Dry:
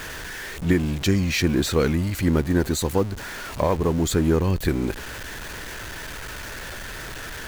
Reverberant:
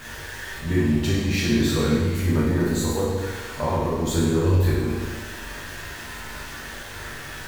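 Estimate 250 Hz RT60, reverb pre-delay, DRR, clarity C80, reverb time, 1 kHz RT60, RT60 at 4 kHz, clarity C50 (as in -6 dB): 1.4 s, 9 ms, -7.5 dB, 2.0 dB, 1.4 s, 1.4 s, 1.3 s, -0.5 dB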